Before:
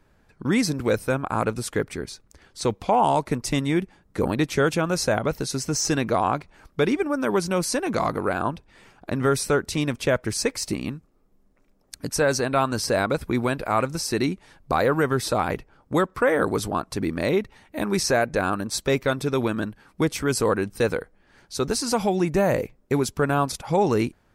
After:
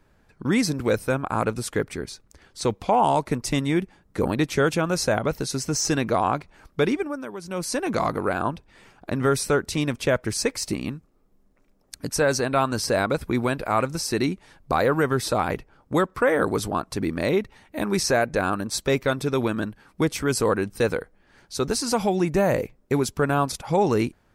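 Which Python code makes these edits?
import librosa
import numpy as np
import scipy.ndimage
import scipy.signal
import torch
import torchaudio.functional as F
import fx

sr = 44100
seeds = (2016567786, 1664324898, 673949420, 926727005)

y = fx.edit(x, sr, fx.fade_down_up(start_s=6.86, length_s=0.98, db=-14.0, fade_s=0.45), tone=tone)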